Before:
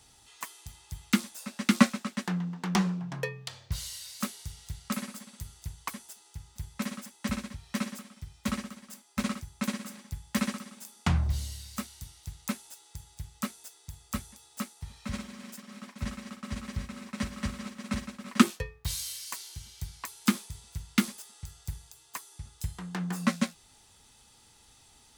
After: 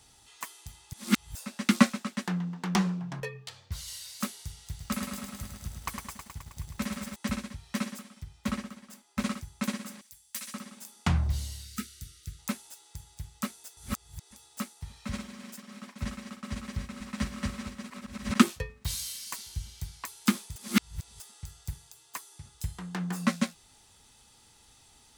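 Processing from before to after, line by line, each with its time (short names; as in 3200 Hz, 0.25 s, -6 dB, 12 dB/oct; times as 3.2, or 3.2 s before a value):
0.93–1.35 reverse
3.2–3.88 ensemble effect
4.59–7.16 lo-fi delay 0.106 s, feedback 80%, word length 9-bit, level -5.5 dB
8.23–9.22 high shelf 3900 Hz -5 dB
10.01–10.54 pre-emphasis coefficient 0.97
11.64–12.39 brick-wall FIR band-stop 510–1200 Hz
13.77–14.31 reverse
16.55–17.17 echo throw 0.45 s, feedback 50%, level -5 dB
17.9–18.35 reverse
19.32–19.81 low shelf 110 Hz +12 dB
20.56–21.2 reverse
21.73–22.54 HPF 97 Hz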